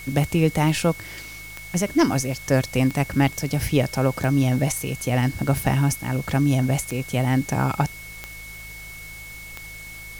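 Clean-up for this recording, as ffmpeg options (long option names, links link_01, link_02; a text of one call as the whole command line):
ffmpeg -i in.wav -af "adeclick=threshold=4,bandreject=frequency=53.3:width_type=h:width=4,bandreject=frequency=106.6:width_type=h:width=4,bandreject=frequency=159.9:width_type=h:width=4,bandreject=frequency=2200:width=30,afwtdn=0.0063" out.wav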